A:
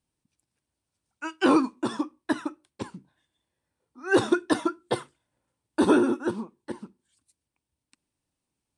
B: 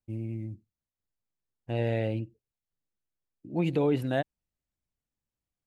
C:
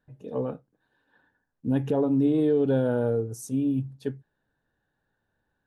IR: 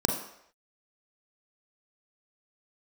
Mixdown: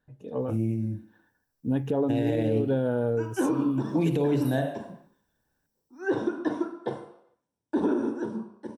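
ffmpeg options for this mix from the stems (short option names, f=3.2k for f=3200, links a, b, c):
-filter_complex "[0:a]acrossover=split=3500[a][b];[b]acompressor=threshold=-52dB:ratio=4:attack=1:release=60[c];[a][c]amix=inputs=2:normalize=0,bandreject=f=50:t=h:w=6,bandreject=f=100:t=h:w=6,bandreject=f=150:t=h:w=6,flanger=delay=5.9:depth=9.1:regen=-81:speed=1.9:shape=triangular,adelay=1950,volume=-11.5dB,asplit=2[d][e];[e]volume=-3.5dB[f];[1:a]aemphasis=mode=production:type=75fm,adelay=400,volume=-2dB,asplit=2[g][h];[h]volume=-8dB[i];[2:a]volume=-1dB,asplit=2[j][k];[k]apad=whole_len=267308[l];[g][l]sidechaingate=range=-33dB:threshold=-59dB:ratio=16:detection=peak[m];[3:a]atrim=start_sample=2205[n];[f][i]amix=inputs=2:normalize=0[o];[o][n]afir=irnorm=-1:irlink=0[p];[d][m][j][p]amix=inputs=4:normalize=0,alimiter=limit=-16.5dB:level=0:latency=1:release=106"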